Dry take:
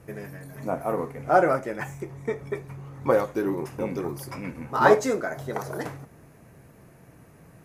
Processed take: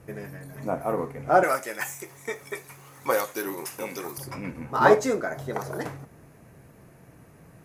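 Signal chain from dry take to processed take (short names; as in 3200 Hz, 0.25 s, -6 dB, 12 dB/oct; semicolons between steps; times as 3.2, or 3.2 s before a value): 1.43–4.18 tilt +4.5 dB/oct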